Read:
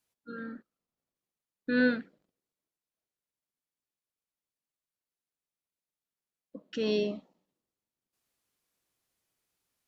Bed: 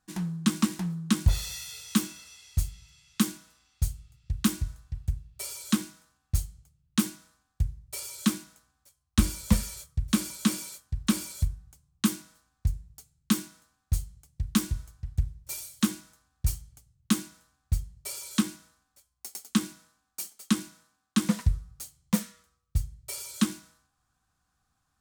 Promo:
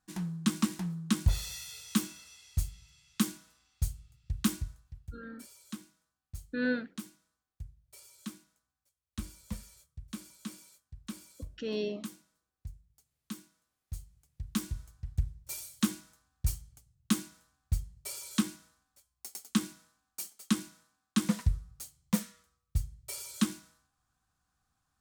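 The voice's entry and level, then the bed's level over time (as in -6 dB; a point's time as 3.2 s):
4.85 s, -5.0 dB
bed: 4.54 s -4 dB
5.18 s -17 dB
13.57 s -17 dB
15.06 s -3.5 dB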